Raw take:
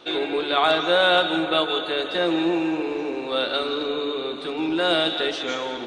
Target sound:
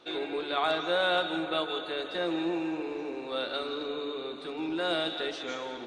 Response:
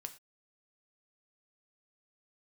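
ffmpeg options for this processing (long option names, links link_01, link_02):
-af "equalizer=frequency=3100:width=4.1:gain=-3.5,volume=-8.5dB"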